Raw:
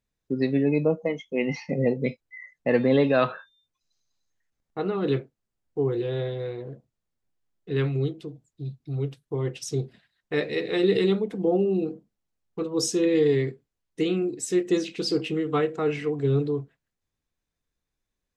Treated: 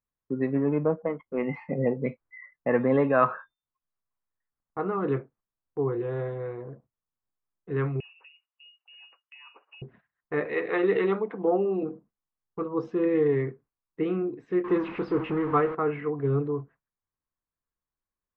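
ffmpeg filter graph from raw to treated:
-filter_complex "[0:a]asettb=1/sr,asplit=3[s0][s1][s2];[s0]atrim=end=0.554[s3];[s1]atrim=start=0.55:end=1.43,asetpts=PTS-STARTPTS,afade=t=in:d=0.004:c=qsin,afade=t=out:st=0.876:d=0.004:c=qsin,adynamicsmooth=sensitivity=5.5:basefreq=950,lowpass=f=2400:p=1[s4];[s2]atrim=start=1.426[s5];[s3][s4]acrossfade=d=0.004:c1=hsin:c2=qsin[s6];[s6][s5]acrossfade=d=0.004:c1=qsin:c2=hsin,asettb=1/sr,asplit=3[s7][s8][s9];[s7]atrim=end=8.004[s10];[s8]atrim=start=8:end=9.82,asetpts=PTS-STARTPTS,afade=t=in:d=0.004:c=qsin,afade=t=out:st=1.816:d=0.004:c=qsin,lowpass=f=2600:t=q:w=0.5098,lowpass=f=2600:t=q:w=0.6013,lowpass=f=2600:t=q:w=0.9,lowpass=f=2600:t=q:w=2.563,afreqshift=-3000,acompressor=threshold=0.0126:ratio=4:attack=3.2:release=140:knee=1:detection=peak,highpass=f=420:w=0.5412,highpass=f=420:w=1.3066[s11];[s9]atrim=start=9.816[s12];[s10][s11]acrossfade=d=0.004:c1=hsin:c2=qsin[s13];[s13][s12]acrossfade=d=0.004:c1=qsin:c2=hsin,asettb=1/sr,asplit=3[s14][s15][s16];[s14]atrim=end=10.454[s17];[s15]atrim=start=10.45:end=11.83,asetpts=PTS-STARTPTS,afade=t=in:d=0.004:c=qsin,afade=t=out:st=1.376:d=0.004:c=qsin,highpass=f=670:p=1,acontrast=64[s18];[s16]atrim=start=11.826[s19];[s17][s18]acrossfade=d=0.004:c1=hsin:c2=qsin[s20];[s20][s19]acrossfade=d=0.004:c1=qsin:c2=hsin,asettb=1/sr,asplit=3[s21][s22][s23];[s21]atrim=end=14.644[s24];[s22]atrim=start=14.64:end=15.75,asetpts=PTS-STARTPTS,afade=t=in:d=0.004:c=qsin,afade=t=out:st=1.106:d=0.004:c=qsin,aeval=exprs='val(0)+0.5*0.0335*sgn(val(0))':c=same,equalizer=f=10000:t=o:w=0.86:g=9[s25];[s23]atrim=start=15.746[s26];[s24][s25]acrossfade=d=0.004:c1=hsin:c2=qsin[s27];[s27][s26]acrossfade=d=0.004:c1=qsin:c2=hsin,agate=range=0.398:threshold=0.00224:ratio=16:detection=peak,lowpass=f=2100:w=0.5412,lowpass=f=2100:w=1.3066,equalizer=f=1100:w=1.9:g=10,volume=0.708"

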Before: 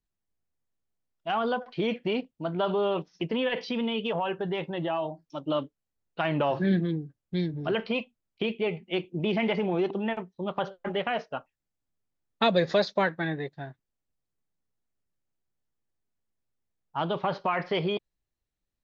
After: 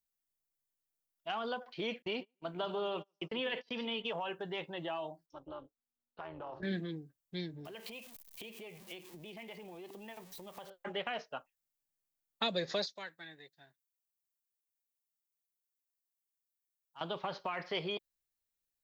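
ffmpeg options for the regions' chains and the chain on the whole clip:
-filter_complex "[0:a]asettb=1/sr,asplit=3[s0][s1][s2];[s0]atrim=end=2.024[s3];[s1]atrim=start=2.02:end=4.05,asetpts=PTS-STARTPTS,afade=t=in:d=0.004:c=qsin,afade=t=out:st=2.026:d=0.004:c=qsin,asplit=2[s4][s5];[s5]adelay=143,lowpass=f=3800:p=1,volume=0.211,asplit=2[s6][s7];[s7]adelay=143,lowpass=f=3800:p=1,volume=0.35,asplit=2[s8][s9];[s9]adelay=143,lowpass=f=3800:p=1,volume=0.35[s10];[s4][s6][s8][s10]amix=inputs=4:normalize=0,atrim=end_sample=89523,agate=range=0.0251:threshold=0.0178:ratio=16:release=100:detection=peak[s11];[s2]atrim=start=4.046[s12];[s3][s11]acrossfade=d=0.004:c1=hsin:c2=qsin[s13];[s13][s12]acrossfade=d=0.004:c1=qsin:c2=hsin,asettb=1/sr,asplit=3[s14][s15][s16];[s14]atrim=end=5.264[s17];[s15]atrim=start=5.26:end=6.63,asetpts=PTS-STARTPTS,afade=t=in:d=0.004:c=qsin,afade=t=out:st=1.366:d=0.004:c=qsin,highshelf=f=1600:t=q:w=1.5:g=-8,acompressor=threshold=0.0224:ratio=2.5:attack=3.2:release=140:knee=1:detection=peak,tremolo=f=240:d=0.71[s18];[s16]atrim=start=6.626[s19];[s17][s18]acrossfade=d=0.004:c1=hsin:c2=qsin[s20];[s20][s19]acrossfade=d=0.004:c1=qsin:c2=hsin,asettb=1/sr,asplit=3[s21][s22][s23];[s21]atrim=end=7.654[s24];[s22]atrim=start=7.65:end=10.7,asetpts=PTS-STARTPTS,afade=t=in:d=0.004:c=qsin,afade=t=out:st=3.046:d=0.004:c=qsin,aeval=exprs='val(0)+0.5*0.0075*sgn(val(0))':c=same,equalizer=f=1400:t=o:w=0.24:g=-8.5,acompressor=threshold=0.0158:ratio=8:attack=3.2:release=140:knee=1:detection=peak[s25];[s23]atrim=start=10.696[s26];[s24][s25]acrossfade=d=0.004:c1=hsin:c2=qsin[s27];[s27][s26]acrossfade=d=0.004:c1=qsin:c2=hsin,asettb=1/sr,asplit=3[s28][s29][s30];[s28]atrim=end=12.864[s31];[s29]atrim=start=12.86:end=17.01,asetpts=PTS-STARTPTS,afade=t=in:d=0.004:c=qsin,afade=t=out:st=4.146:d=0.004:c=qsin,highpass=f=550:p=1,equalizer=f=870:w=0.31:g=-13.5[s32];[s30]atrim=start=17.006[s33];[s31][s32]acrossfade=d=0.004:c1=hsin:c2=qsin[s34];[s34][s33]acrossfade=d=0.004:c1=qsin:c2=hsin,aemphasis=mode=production:type=50kf,acrossover=split=440|3000[s35][s36][s37];[s36]acompressor=threshold=0.0398:ratio=6[s38];[s35][s38][s37]amix=inputs=3:normalize=0,lowshelf=f=330:g=-9,volume=0.473"

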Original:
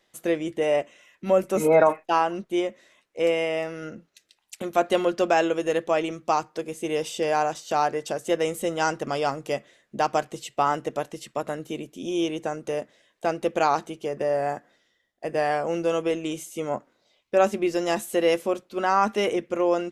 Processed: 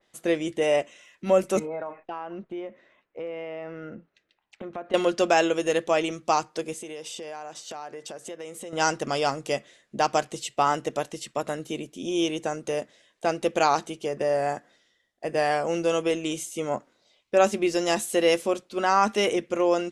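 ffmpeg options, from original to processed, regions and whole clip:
-filter_complex "[0:a]asettb=1/sr,asplit=3[s0][s1][s2];[s0]atrim=end=1.594[s3];[s1]atrim=start=1.59:end=4.94,asetpts=PTS-STARTPTS,afade=t=in:d=0.004:c=qsin,afade=t=out:st=3.346:d=0.004:c=qsin,lowpass=2100,acompressor=threshold=0.0224:ratio=4:attack=3.2:release=140:knee=1:detection=peak[s4];[s2]atrim=start=4.936[s5];[s3][s4]acrossfade=d=0.004:c1=hsin:c2=qsin[s6];[s6][s5]acrossfade=d=0.004:c1=qsin:c2=hsin,asettb=1/sr,asplit=3[s7][s8][s9];[s7]atrim=end=6.744[s10];[s8]atrim=start=6.74:end=8.73,asetpts=PTS-STARTPTS,afade=t=in:d=0.004:c=qsin,afade=t=out:st=1.986:d=0.004:c=qsin,acompressor=threshold=0.0178:ratio=5:attack=3.2:release=140:knee=1:detection=peak,highpass=f=200:p=1[s11];[s9]atrim=start=8.726[s12];[s10][s11]acrossfade=d=0.004:c1=hsin:c2=qsin[s13];[s13][s12]acrossfade=d=0.004:c1=qsin:c2=hsin,lowpass=f=11000:w=0.5412,lowpass=f=11000:w=1.3066,adynamicequalizer=threshold=0.01:dfrequency=2600:dqfactor=0.7:tfrequency=2600:tqfactor=0.7:attack=5:release=100:ratio=0.375:range=3:mode=boostabove:tftype=highshelf"

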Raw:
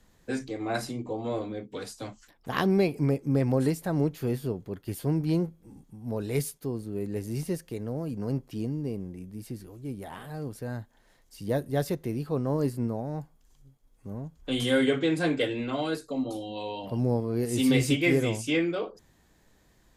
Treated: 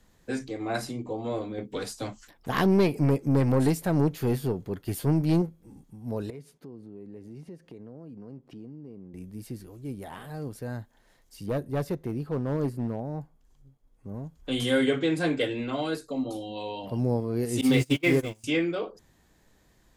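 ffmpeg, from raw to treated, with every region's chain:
-filter_complex "[0:a]asettb=1/sr,asplit=3[s0][s1][s2];[s0]atrim=end=1.584[s3];[s1]atrim=start=1.58:end=5.42,asetpts=PTS-STARTPTS,afade=t=in:d=0.004:c=qsin,afade=t=out:st=3.836:d=0.004:c=qsin,acontrast=29,aeval=exprs='(tanh(5.62*val(0)+0.35)-tanh(0.35))/5.62':c=same[s4];[s2]atrim=start=5.416[s5];[s3][s4]acrossfade=d=0.004:c1=hsin:c2=qsin[s6];[s6][s5]acrossfade=d=0.004:c1=qsin:c2=hsin,asettb=1/sr,asplit=3[s7][s8][s9];[s7]atrim=end=6.304[s10];[s8]atrim=start=6.3:end=9.14,asetpts=PTS-STARTPTS,afade=t=in:d=0.004:c=qsin,afade=t=out:st=2.836:d=0.004:c=qsin,highpass=240,aemphasis=mode=reproduction:type=riaa,acompressor=threshold=0.00562:ratio=3:attack=3.2:release=140:knee=1:detection=peak[s11];[s9]atrim=start=9.136[s12];[s10][s11]acrossfade=d=0.004:c1=hsin:c2=qsin[s13];[s13][s12]acrossfade=d=0.004:c1=qsin:c2=hsin,asettb=1/sr,asplit=3[s14][s15][s16];[s14]atrim=end=11.464[s17];[s15]atrim=start=11.46:end=14.14,asetpts=PTS-STARTPTS,afade=t=in:d=0.004:c=qsin,afade=t=out:st=2.676:d=0.004:c=qsin,highshelf=f=2100:g=-8,aeval=exprs='clip(val(0),-1,0.0631)':c=same[s18];[s16]atrim=start=14.136[s19];[s17][s18]acrossfade=d=0.004:c1=hsin:c2=qsin[s20];[s20][s19]acrossfade=d=0.004:c1=qsin:c2=hsin,asettb=1/sr,asplit=3[s21][s22][s23];[s21]atrim=end=17.614[s24];[s22]atrim=start=17.61:end=18.44,asetpts=PTS-STARTPTS,afade=t=in:d=0.004:c=qsin,afade=t=out:st=0.826:d=0.004:c=qsin,aeval=exprs='val(0)+0.5*0.0211*sgn(val(0))':c=same,agate=range=0.0355:threshold=0.0631:ratio=16:release=100:detection=peak[s25];[s23]atrim=start=18.436[s26];[s24][s25]acrossfade=d=0.004:c1=hsin:c2=qsin[s27];[s27][s26]acrossfade=d=0.004:c1=qsin:c2=hsin"

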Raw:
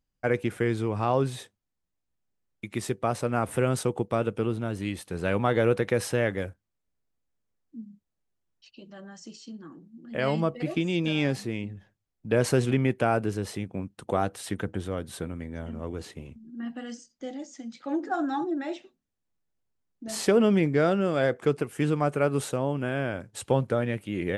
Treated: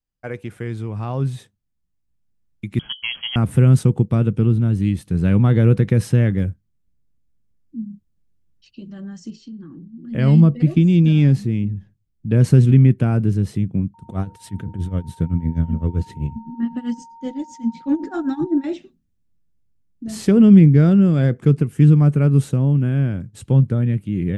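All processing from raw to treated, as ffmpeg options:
-filter_complex "[0:a]asettb=1/sr,asplit=3[s0][s1][s2];[s0]atrim=end=2.794[s3];[s1]atrim=start=2.79:end=3.36,asetpts=PTS-STARTPTS,afade=t=in:d=0.004:c=qsin,afade=t=out:st=0.566:d=0.004:c=qsin,bandreject=f=50:t=h:w=6,bandreject=f=100:t=h:w=6,bandreject=f=150:t=h:w=6,bandreject=f=200:t=h:w=6,bandreject=f=250:t=h:w=6,bandreject=f=300:t=h:w=6,bandreject=f=350:t=h:w=6,bandreject=f=400:t=h:w=6,bandreject=f=450:t=h:w=6,lowpass=f=2900:t=q:w=0.5098,lowpass=f=2900:t=q:w=0.6013,lowpass=f=2900:t=q:w=0.9,lowpass=f=2900:t=q:w=2.563,afreqshift=-3400[s4];[s2]atrim=start=3.356[s5];[s3][s4]acrossfade=d=0.004:c1=hsin:c2=qsin[s6];[s6][s5]acrossfade=d=0.004:c1=qsin:c2=hsin,asettb=1/sr,asplit=3[s7][s8][s9];[s7]atrim=end=9.304[s10];[s8]atrim=start=9.3:end=10.05,asetpts=PTS-STARTPTS,afade=t=in:d=0.004:c=qsin,afade=t=out:st=0.746:d=0.004:c=qsin,lowpass=4800,acompressor=threshold=0.00631:ratio=6:attack=3.2:release=140:knee=1:detection=peak,bandreject=f=670:w=17[s11];[s9]atrim=start=10.046[s12];[s10][s11]acrossfade=d=0.004:c1=hsin:c2=qsin[s13];[s13][s12]acrossfade=d=0.004:c1=qsin:c2=hsin,asettb=1/sr,asplit=3[s14][s15][s16];[s14]atrim=end=13.944[s17];[s15]atrim=start=13.94:end=18.64,asetpts=PTS-STARTPTS,afade=t=in:d=0.004:c=qsin,afade=t=out:st=4.696:d=0.004:c=qsin,tremolo=f=7.8:d=0.86,aphaser=in_gain=1:out_gain=1:delay=2.3:decay=0.25:speed=1.3:type=sinusoidal,aeval=exprs='val(0)+0.00794*sin(2*PI*920*n/s)':c=same[s18];[s16]atrim=start=18.636[s19];[s17][s18]acrossfade=d=0.004:c1=hsin:c2=qsin[s20];[s20][s19]acrossfade=d=0.004:c1=qsin:c2=hsin,asubboost=boost=7:cutoff=240,dynaudnorm=f=310:g=13:m=4.47,adynamicequalizer=threshold=0.0501:dfrequency=160:dqfactor=1.4:tfrequency=160:tqfactor=1.4:attack=5:release=100:ratio=0.375:range=3:mode=boostabove:tftype=bell,volume=0.596"

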